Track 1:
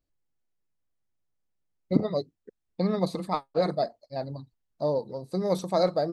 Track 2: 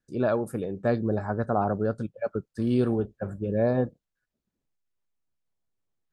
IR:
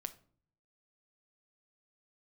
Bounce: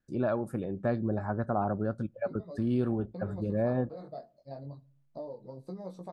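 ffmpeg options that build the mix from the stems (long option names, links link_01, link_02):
-filter_complex "[0:a]equalizer=frequency=2500:width=0.92:gain=-5,acompressor=threshold=-32dB:ratio=6,flanger=delay=15.5:depth=7.2:speed=0.38,adelay=350,volume=-6.5dB,asplit=2[link_01][link_02];[link_02]volume=-3dB[link_03];[1:a]equalizer=frequency=450:width=6.7:gain=-8,volume=2dB,asplit=2[link_04][link_05];[link_05]volume=-20.5dB[link_06];[2:a]atrim=start_sample=2205[link_07];[link_03][link_06]amix=inputs=2:normalize=0[link_08];[link_08][link_07]afir=irnorm=-1:irlink=0[link_09];[link_01][link_04][link_09]amix=inputs=3:normalize=0,highshelf=frequency=3500:gain=-10,acompressor=threshold=-36dB:ratio=1.5"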